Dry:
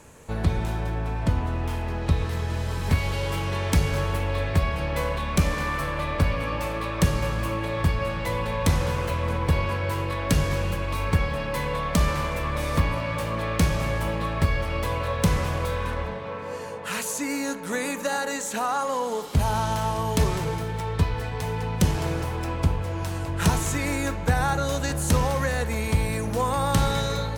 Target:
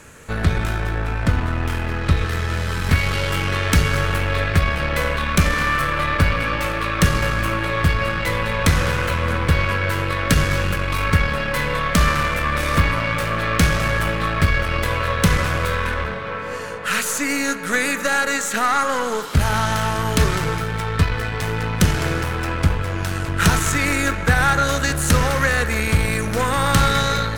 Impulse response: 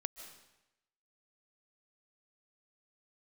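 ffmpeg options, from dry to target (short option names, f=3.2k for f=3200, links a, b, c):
-filter_complex "[0:a]aeval=exprs='0.282*(cos(1*acos(clip(val(0)/0.282,-1,1)))-cos(1*PI/2))+0.0178*(cos(8*acos(clip(val(0)/0.282,-1,1)))-cos(8*PI/2))':c=same,asplit=2[a][b];[b]highpass=f=1.3k:t=q:w=2.7[c];[1:a]atrim=start_sample=2205,highshelf=f=5k:g=-12[d];[c][d]afir=irnorm=-1:irlink=0,volume=-1.5dB[e];[a][e]amix=inputs=2:normalize=0,volume=4.5dB"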